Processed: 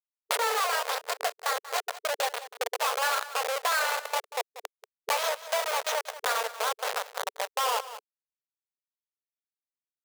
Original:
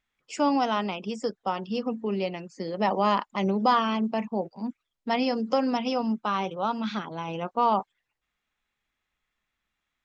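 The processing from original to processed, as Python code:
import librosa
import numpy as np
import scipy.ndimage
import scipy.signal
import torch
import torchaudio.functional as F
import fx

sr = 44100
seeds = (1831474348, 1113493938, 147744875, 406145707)

p1 = fx.pitch_glide(x, sr, semitones=8.0, runs='ending unshifted')
p2 = fx.tilt_eq(p1, sr, slope=3.0)
p3 = fx.schmitt(p2, sr, flips_db=-27.5)
p4 = fx.brickwall_highpass(p3, sr, low_hz=430.0)
p5 = p4 + fx.echo_single(p4, sr, ms=186, db=-17.0, dry=0)
p6 = fx.band_squash(p5, sr, depth_pct=70)
y = F.gain(torch.from_numpy(p6), 5.5).numpy()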